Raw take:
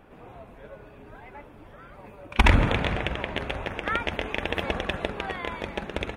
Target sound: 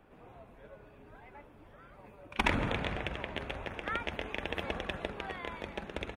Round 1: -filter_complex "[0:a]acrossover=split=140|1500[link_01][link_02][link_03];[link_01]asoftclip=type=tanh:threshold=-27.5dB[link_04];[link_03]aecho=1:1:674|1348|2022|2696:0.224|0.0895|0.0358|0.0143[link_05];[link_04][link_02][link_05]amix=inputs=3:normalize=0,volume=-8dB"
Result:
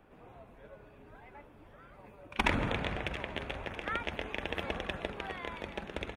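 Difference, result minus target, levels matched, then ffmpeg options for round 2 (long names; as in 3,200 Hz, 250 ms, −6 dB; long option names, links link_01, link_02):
echo-to-direct +5 dB
-filter_complex "[0:a]acrossover=split=140|1500[link_01][link_02][link_03];[link_01]asoftclip=type=tanh:threshold=-27.5dB[link_04];[link_03]aecho=1:1:674|1348|2022:0.0708|0.0283|0.0113[link_05];[link_04][link_02][link_05]amix=inputs=3:normalize=0,volume=-8dB"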